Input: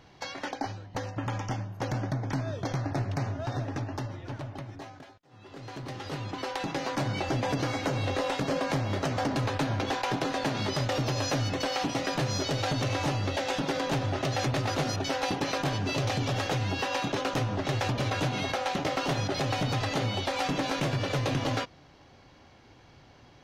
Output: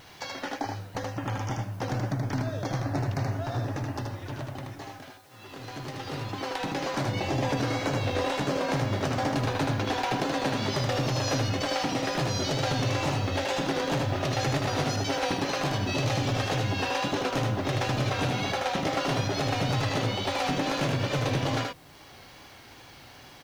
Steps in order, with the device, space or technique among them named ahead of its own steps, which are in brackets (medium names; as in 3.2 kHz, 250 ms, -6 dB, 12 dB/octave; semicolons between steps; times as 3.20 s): 7.03–7.45 s: band-stop 1.4 kHz, Q 6.1; noise-reduction cassette on a plain deck (tape noise reduction on one side only encoder only; wow and flutter; white noise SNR 33 dB); delay 78 ms -3.5 dB